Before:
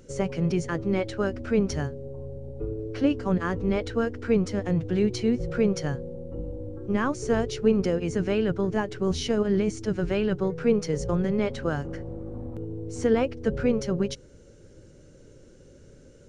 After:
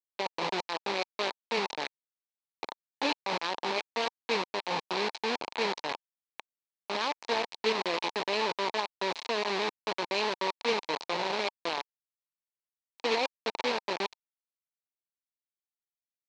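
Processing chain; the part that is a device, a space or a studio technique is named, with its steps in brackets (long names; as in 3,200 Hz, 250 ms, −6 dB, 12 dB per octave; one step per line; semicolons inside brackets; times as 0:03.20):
hand-held game console (bit reduction 4 bits; loudspeaker in its box 450–5,500 Hz, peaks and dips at 920 Hz +9 dB, 1,400 Hz −5 dB, 2,400 Hz +5 dB, 4,100 Hz +8 dB)
level −5 dB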